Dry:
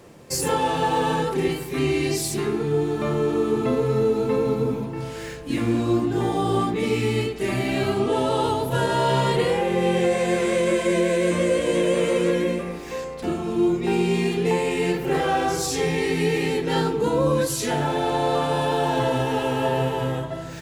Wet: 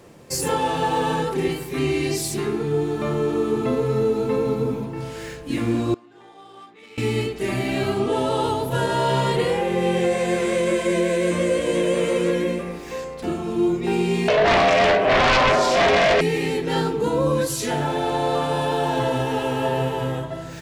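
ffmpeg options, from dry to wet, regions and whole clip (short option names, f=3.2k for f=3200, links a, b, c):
-filter_complex "[0:a]asettb=1/sr,asplit=3[a][b][c];[a]atrim=end=5.944[d];[b]atrim=start=5.94:end=6.98,asetpts=PTS-STARTPTS,afade=t=in:d=0.004:c=qsin,afade=t=out:st=1.036:d=0.004:c=qsin,aderivative,adynamicsmooth=sensitivity=4.5:basefreq=1.7k[e];[c]atrim=start=6.976[f];[d][e]acrossfade=d=0.004:c1=hsin:c2=qsin[g];[g][f]acrossfade=d=0.004:c1=qsin:c2=hsin,asettb=1/sr,asplit=3[h][i][j];[h]atrim=end=14.284[k];[i]atrim=start=14.28:end=16.21,asetpts=PTS-STARTPTS,afade=t=in:d=0.004:c=qsin,afade=t=out:st=1.926:d=0.004:c=qsin,aeval=exprs='val(0)*sin(2*PI*250*n/s)':c=same,highpass=340,lowpass=2.7k,aeval=exprs='0.224*sin(PI/2*4.47*val(0)/0.224)':c=same[l];[j]atrim=start=16.206[m];[k][l]acrossfade=d=0.004:c1=hsin:c2=qsin[n];[n][m]acrossfade=d=0.004:c1=qsin:c2=hsin"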